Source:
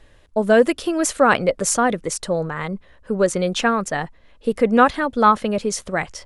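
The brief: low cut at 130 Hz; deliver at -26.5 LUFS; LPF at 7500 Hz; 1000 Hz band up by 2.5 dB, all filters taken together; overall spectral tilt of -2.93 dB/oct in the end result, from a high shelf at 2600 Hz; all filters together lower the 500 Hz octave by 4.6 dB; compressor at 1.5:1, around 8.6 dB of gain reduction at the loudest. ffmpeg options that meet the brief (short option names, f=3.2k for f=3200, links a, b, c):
-af "highpass=130,lowpass=7.5k,equalizer=f=500:t=o:g=-7,equalizer=f=1k:t=o:g=4,highshelf=f=2.6k:g=6.5,acompressor=threshold=-31dB:ratio=1.5,volume=-1dB"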